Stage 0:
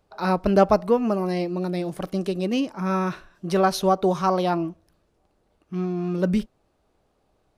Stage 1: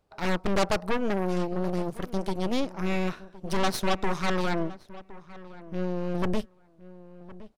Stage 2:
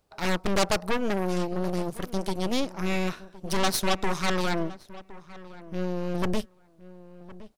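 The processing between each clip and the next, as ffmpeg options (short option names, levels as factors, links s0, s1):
-filter_complex "[0:a]aeval=exprs='0.531*(cos(1*acos(clip(val(0)/0.531,-1,1)))-cos(1*PI/2))+0.15*(cos(8*acos(clip(val(0)/0.531,-1,1)))-cos(8*PI/2))':c=same,asoftclip=type=tanh:threshold=0.251,asplit=2[s0][s1];[s1]adelay=1065,lowpass=f=1900:p=1,volume=0.133,asplit=2[s2][s3];[s3]adelay=1065,lowpass=f=1900:p=1,volume=0.17[s4];[s0][s2][s4]amix=inputs=3:normalize=0,volume=0.562"
-af "highshelf=f=3800:g=8.5"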